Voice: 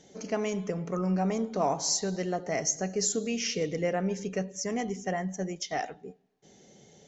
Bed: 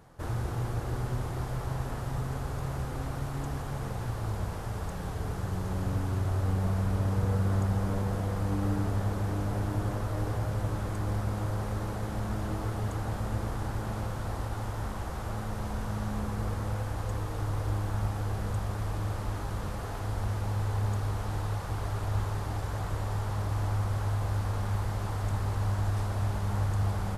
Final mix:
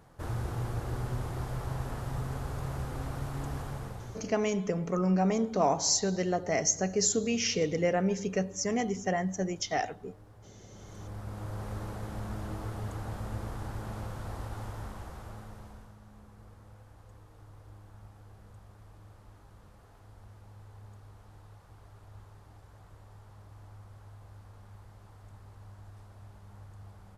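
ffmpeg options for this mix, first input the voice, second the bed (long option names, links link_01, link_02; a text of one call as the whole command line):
ffmpeg -i stem1.wav -i stem2.wav -filter_complex "[0:a]adelay=4000,volume=1.5dB[link_01];[1:a]volume=16.5dB,afade=type=out:start_time=3.62:duration=0.71:silence=0.0841395,afade=type=in:start_time=10.69:duration=1.04:silence=0.11885,afade=type=out:start_time=14.63:duration=1.33:silence=0.158489[link_02];[link_01][link_02]amix=inputs=2:normalize=0" out.wav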